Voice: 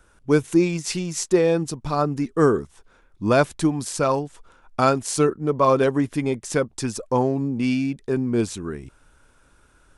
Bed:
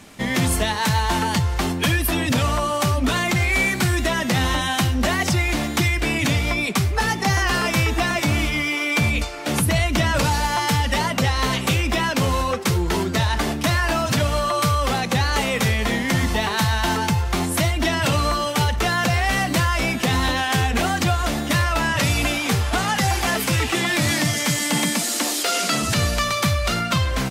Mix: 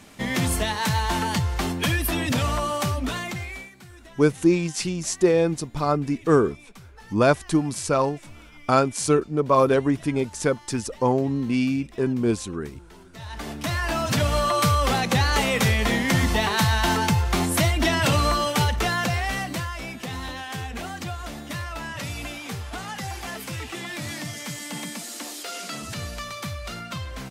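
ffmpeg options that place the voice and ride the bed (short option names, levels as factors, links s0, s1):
-filter_complex "[0:a]adelay=3900,volume=0.944[s0];[1:a]volume=13.3,afade=t=out:st=2.71:d=0.99:silence=0.0707946,afade=t=in:st=13.12:d=1.3:silence=0.0501187,afade=t=out:st=18.42:d=1.34:silence=0.251189[s1];[s0][s1]amix=inputs=2:normalize=0"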